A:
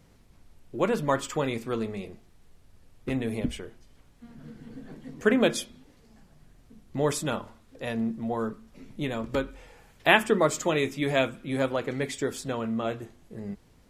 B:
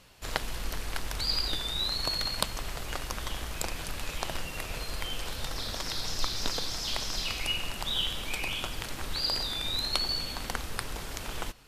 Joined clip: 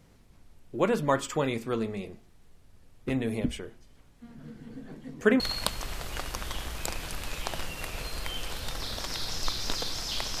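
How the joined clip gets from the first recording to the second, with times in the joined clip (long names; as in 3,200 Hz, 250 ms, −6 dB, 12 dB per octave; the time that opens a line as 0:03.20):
A
0:05.40: continue with B from 0:02.16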